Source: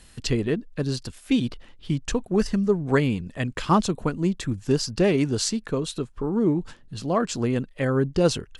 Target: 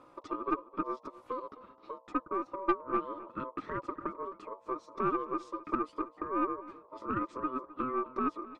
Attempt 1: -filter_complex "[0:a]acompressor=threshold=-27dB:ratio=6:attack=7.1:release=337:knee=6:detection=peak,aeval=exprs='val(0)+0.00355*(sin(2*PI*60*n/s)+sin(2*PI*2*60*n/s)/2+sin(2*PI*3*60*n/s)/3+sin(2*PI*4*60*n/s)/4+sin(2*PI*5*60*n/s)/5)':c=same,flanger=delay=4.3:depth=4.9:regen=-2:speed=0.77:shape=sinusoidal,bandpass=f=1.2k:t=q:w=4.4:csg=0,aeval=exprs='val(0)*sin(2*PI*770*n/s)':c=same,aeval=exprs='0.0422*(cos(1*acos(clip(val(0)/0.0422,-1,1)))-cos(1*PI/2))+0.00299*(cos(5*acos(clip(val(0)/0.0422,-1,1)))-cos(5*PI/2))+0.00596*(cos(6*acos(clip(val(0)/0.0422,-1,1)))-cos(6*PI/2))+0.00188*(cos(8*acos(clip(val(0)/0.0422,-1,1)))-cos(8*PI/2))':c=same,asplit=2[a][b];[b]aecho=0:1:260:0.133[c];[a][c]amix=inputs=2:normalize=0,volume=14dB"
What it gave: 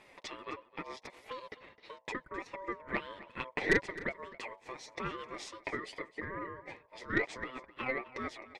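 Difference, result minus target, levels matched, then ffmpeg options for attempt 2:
1000 Hz band -6.0 dB; compressor: peak gain reduction -5.5 dB
-filter_complex "[0:a]acompressor=threshold=-33.5dB:ratio=6:attack=7.1:release=337:knee=6:detection=peak,aeval=exprs='val(0)+0.00355*(sin(2*PI*60*n/s)+sin(2*PI*2*60*n/s)/2+sin(2*PI*3*60*n/s)/3+sin(2*PI*4*60*n/s)/4+sin(2*PI*5*60*n/s)/5)':c=same,flanger=delay=4.3:depth=4.9:regen=-2:speed=0.77:shape=sinusoidal,bandpass=f=460:t=q:w=4.4:csg=0,aeval=exprs='val(0)*sin(2*PI*770*n/s)':c=same,aeval=exprs='0.0422*(cos(1*acos(clip(val(0)/0.0422,-1,1)))-cos(1*PI/2))+0.00299*(cos(5*acos(clip(val(0)/0.0422,-1,1)))-cos(5*PI/2))+0.00596*(cos(6*acos(clip(val(0)/0.0422,-1,1)))-cos(6*PI/2))+0.00188*(cos(8*acos(clip(val(0)/0.0422,-1,1)))-cos(8*PI/2))':c=same,asplit=2[a][b];[b]aecho=0:1:260:0.133[c];[a][c]amix=inputs=2:normalize=0,volume=14dB"

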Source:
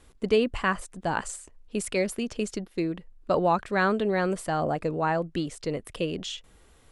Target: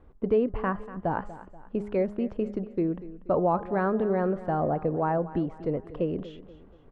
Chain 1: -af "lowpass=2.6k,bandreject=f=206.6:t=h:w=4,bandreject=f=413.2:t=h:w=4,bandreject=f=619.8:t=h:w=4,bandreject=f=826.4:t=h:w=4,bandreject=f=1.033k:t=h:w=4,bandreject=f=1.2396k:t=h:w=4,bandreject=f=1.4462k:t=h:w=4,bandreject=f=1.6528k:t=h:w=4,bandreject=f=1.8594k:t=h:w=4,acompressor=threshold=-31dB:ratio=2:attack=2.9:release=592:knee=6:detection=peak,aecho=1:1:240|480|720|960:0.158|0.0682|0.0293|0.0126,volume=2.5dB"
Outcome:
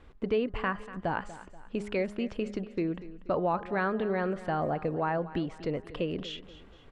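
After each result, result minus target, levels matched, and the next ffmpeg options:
2000 Hz band +7.0 dB; compressor: peak gain reduction +5 dB
-af "lowpass=1k,bandreject=f=206.6:t=h:w=4,bandreject=f=413.2:t=h:w=4,bandreject=f=619.8:t=h:w=4,bandreject=f=826.4:t=h:w=4,bandreject=f=1.033k:t=h:w=4,bandreject=f=1.2396k:t=h:w=4,bandreject=f=1.4462k:t=h:w=4,bandreject=f=1.6528k:t=h:w=4,bandreject=f=1.8594k:t=h:w=4,acompressor=threshold=-31dB:ratio=2:attack=2.9:release=592:knee=6:detection=peak,aecho=1:1:240|480|720|960:0.158|0.0682|0.0293|0.0126,volume=2.5dB"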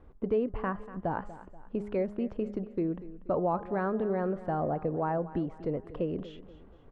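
compressor: peak gain reduction +4.5 dB
-af "lowpass=1k,bandreject=f=206.6:t=h:w=4,bandreject=f=413.2:t=h:w=4,bandreject=f=619.8:t=h:w=4,bandreject=f=826.4:t=h:w=4,bandreject=f=1.033k:t=h:w=4,bandreject=f=1.2396k:t=h:w=4,bandreject=f=1.4462k:t=h:w=4,bandreject=f=1.6528k:t=h:w=4,bandreject=f=1.8594k:t=h:w=4,acompressor=threshold=-21.5dB:ratio=2:attack=2.9:release=592:knee=6:detection=peak,aecho=1:1:240|480|720|960:0.158|0.0682|0.0293|0.0126,volume=2.5dB"

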